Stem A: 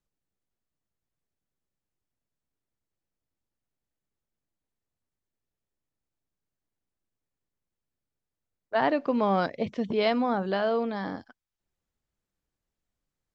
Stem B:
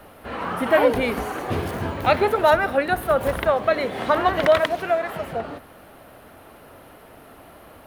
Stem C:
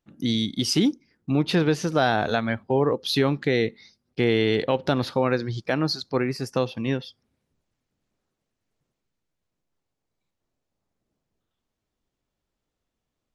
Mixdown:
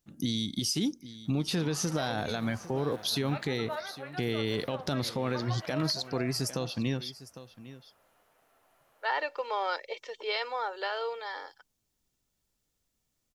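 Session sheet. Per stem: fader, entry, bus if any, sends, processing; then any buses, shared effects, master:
−2.5 dB, 0.30 s, no send, no echo send, Bessel high-pass filter 640 Hz, order 8; spectral tilt +2 dB per octave; comb filter 2.2 ms, depth 61%
−15.5 dB, 1.25 s, no send, no echo send, high-pass filter 550 Hz 12 dB per octave; flanger 0.16 Hz, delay 8.6 ms, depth 5.4 ms, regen +50%
−4.0 dB, 0.00 s, no send, echo send −17.5 dB, bass and treble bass +5 dB, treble +14 dB; downward compressor, threshold −21 dBFS, peak gain reduction 10 dB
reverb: not used
echo: single-tap delay 804 ms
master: brickwall limiter −20.5 dBFS, peak gain reduction 5.5 dB

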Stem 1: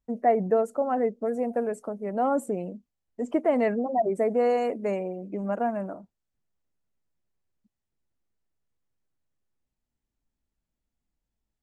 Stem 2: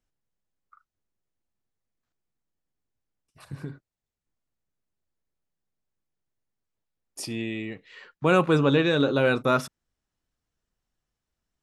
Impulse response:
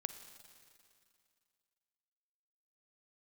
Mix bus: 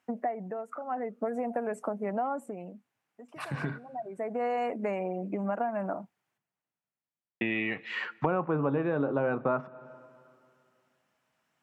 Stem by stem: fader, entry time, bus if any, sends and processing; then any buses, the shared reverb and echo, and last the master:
−0.5 dB, 0.00 s, no send, low-shelf EQ 410 Hz +5 dB; downward compressor 6 to 1, threshold −28 dBFS, peak gain reduction 12.5 dB; automatic ducking −20 dB, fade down 1.30 s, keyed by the second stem
+2.5 dB, 0.00 s, muted 0:06.38–0:07.41, send −12.5 dB, treble cut that deepens with the level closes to 750 Hz, closed at −22.5 dBFS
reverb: on, RT60 2.4 s, pre-delay 39 ms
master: high-pass filter 120 Hz 24 dB per octave; flat-topped bell 1,400 Hz +9.5 dB 2.4 octaves; downward compressor 4 to 1, threshold −27 dBFS, peak gain reduction 15 dB

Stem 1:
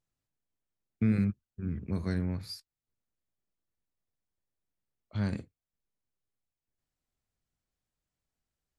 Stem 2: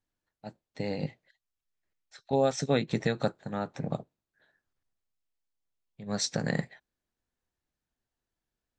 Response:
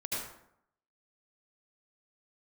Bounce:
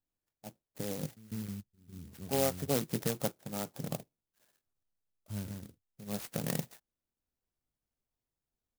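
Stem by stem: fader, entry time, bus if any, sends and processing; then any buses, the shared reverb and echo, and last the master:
−0.5 dB, 0.15 s, no send, echo send −5.5 dB, automatic ducking −22 dB, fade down 0.60 s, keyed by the second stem
+2.5 dB, 0.00 s, no send, no echo send, no processing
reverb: not used
echo: single-tap delay 150 ms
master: transistor ladder low-pass 3,500 Hz, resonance 35%; converter with an unsteady clock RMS 0.15 ms

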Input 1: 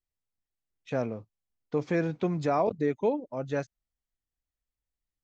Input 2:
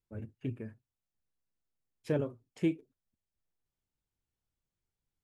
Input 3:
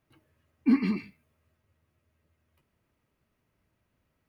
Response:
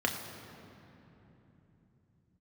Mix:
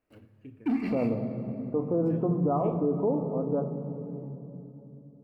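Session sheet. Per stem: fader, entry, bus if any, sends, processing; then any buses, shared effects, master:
−3.0 dB, 0.00 s, send −7.5 dB, Butterworth low-pass 1,300 Hz 96 dB per octave; low-shelf EQ 390 Hz +6 dB; sample-and-hold tremolo 3.5 Hz
−14.0 dB, 0.00 s, send −10.5 dB, automatic ducking −10 dB, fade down 0.20 s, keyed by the first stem
−8.0 dB, 0.00 s, send −5.5 dB, parametric band 470 Hz +5 dB 1.3 octaves; downward compressor 6 to 1, threshold −29 dBFS, peak gain reduction 13 dB; leveller curve on the samples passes 2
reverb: on, RT60 3.3 s, pre-delay 3 ms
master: brickwall limiter −18 dBFS, peak gain reduction 8 dB

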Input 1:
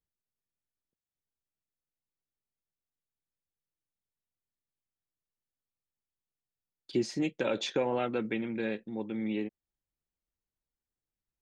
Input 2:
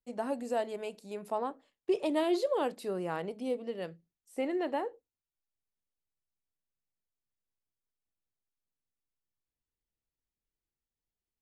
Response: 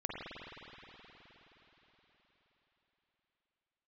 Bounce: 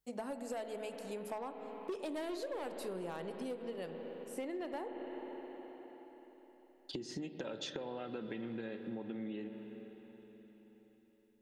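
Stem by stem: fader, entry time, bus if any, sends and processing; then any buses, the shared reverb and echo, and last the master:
−0.5 dB, 0.00 s, send −10 dB, notch filter 2,300 Hz, Q 5.3; downward compressor, threshold −34 dBFS, peak gain reduction 10 dB
−2.0 dB, 0.00 s, send −8.5 dB, high-shelf EQ 5,400 Hz +5.5 dB; hard clipping −26.5 dBFS, distortion −15 dB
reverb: on, RT60 4.6 s, pre-delay 43 ms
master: downward compressor 5 to 1, threshold −39 dBFS, peak gain reduction 11 dB

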